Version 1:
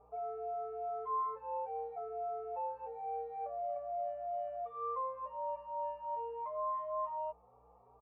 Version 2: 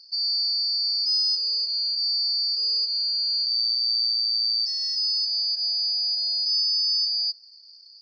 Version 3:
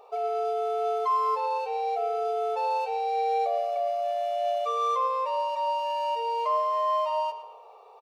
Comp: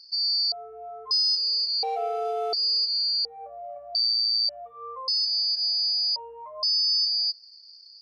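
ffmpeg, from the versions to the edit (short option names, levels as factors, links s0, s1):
-filter_complex "[0:a]asplit=4[s0][s1][s2][s3];[1:a]asplit=6[s4][s5][s6][s7][s8][s9];[s4]atrim=end=0.522[s10];[s0]atrim=start=0.518:end=1.112[s11];[s5]atrim=start=1.108:end=1.832[s12];[2:a]atrim=start=1.828:end=2.532[s13];[s6]atrim=start=2.528:end=3.252[s14];[s1]atrim=start=3.248:end=3.952[s15];[s7]atrim=start=3.948:end=4.492[s16];[s2]atrim=start=4.488:end=5.082[s17];[s8]atrim=start=5.078:end=6.162[s18];[s3]atrim=start=6.158:end=6.632[s19];[s9]atrim=start=6.628[s20];[s10][s11]acrossfade=d=0.004:c1=hsin:c2=hsin[s21];[s21][s12]acrossfade=d=0.004:c1=hsin:c2=hsin[s22];[s22][s13]acrossfade=d=0.004:c1=hsin:c2=hsin[s23];[s23][s14]acrossfade=d=0.004:c1=hsin:c2=hsin[s24];[s24][s15]acrossfade=d=0.004:c1=hsin:c2=hsin[s25];[s25][s16]acrossfade=d=0.004:c1=hsin:c2=hsin[s26];[s26][s17]acrossfade=d=0.004:c1=hsin:c2=hsin[s27];[s27][s18]acrossfade=d=0.004:c1=hsin:c2=hsin[s28];[s28][s19]acrossfade=d=0.004:c1=hsin:c2=hsin[s29];[s29][s20]acrossfade=d=0.004:c1=hsin:c2=hsin"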